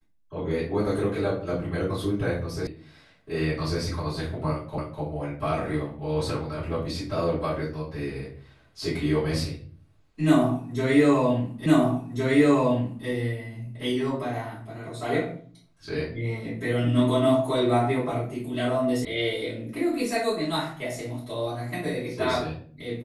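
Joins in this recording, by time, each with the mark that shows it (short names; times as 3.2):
2.67 sound cut off
4.78 repeat of the last 0.25 s
11.66 repeat of the last 1.41 s
19.05 sound cut off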